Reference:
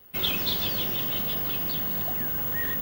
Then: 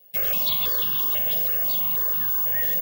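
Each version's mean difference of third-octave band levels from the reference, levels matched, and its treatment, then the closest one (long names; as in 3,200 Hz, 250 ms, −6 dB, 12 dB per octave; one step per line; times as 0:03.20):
7.5 dB: high-pass filter 250 Hz 6 dB per octave
comb filter 1.8 ms, depth 53%
in parallel at 0 dB: bit-depth reduction 6 bits, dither none
on the sum: step-sequenced phaser 6.1 Hz 330–2,100 Hz
level −3.5 dB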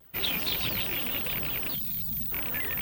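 4.0 dB: loose part that buzzes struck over −37 dBFS, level −19 dBFS
gain on a spectral selection 0:01.75–0:02.32, 240–3,300 Hz −18 dB
phase shifter 1.4 Hz, delay 4.5 ms, feedback 38%
pitch modulation by a square or saw wave saw down 5 Hz, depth 160 cents
level −3.5 dB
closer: second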